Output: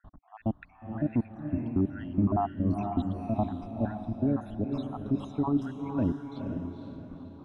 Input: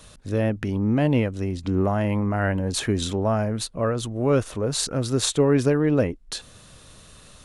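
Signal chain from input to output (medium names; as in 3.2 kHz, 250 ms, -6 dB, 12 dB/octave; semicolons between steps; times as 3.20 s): random holes in the spectrogram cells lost 77%; level-controlled noise filter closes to 1.4 kHz, open at -19 dBFS; FFT filter 160 Hz 0 dB, 290 Hz +6 dB, 500 Hz -15 dB, 720 Hz +6 dB, 1.1 kHz +1 dB, 1.7 kHz -13 dB, 2.7 kHz -11 dB, 4.2 kHz -13 dB, 6.9 kHz -26 dB, 10 kHz -19 dB; peak limiter -18.5 dBFS, peak gain reduction 10 dB; on a send: echo that smears into a reverb 487 ms, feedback 45%, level -5 dB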